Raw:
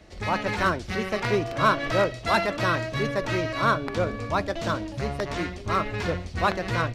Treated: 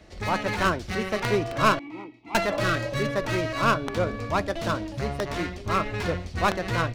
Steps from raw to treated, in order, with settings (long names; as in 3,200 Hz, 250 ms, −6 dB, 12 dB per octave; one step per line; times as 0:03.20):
stylus tracing distortion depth 0.13 ms
0:01.79–0:02.35: formant filter u
0:02.54–0:03.06: healed spectral selection 440–1,100 Hz both